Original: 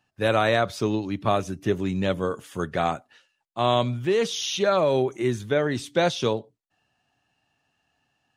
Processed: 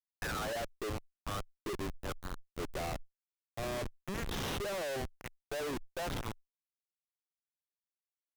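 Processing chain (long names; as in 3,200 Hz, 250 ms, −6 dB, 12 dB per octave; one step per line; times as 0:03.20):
auto-filter high-pass sine 1 Hz 350–1,600 Hz
comparator with hysteresis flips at −25.5 dBFS
tube saturation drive 45 dB, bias 0.75
level +8.5 dB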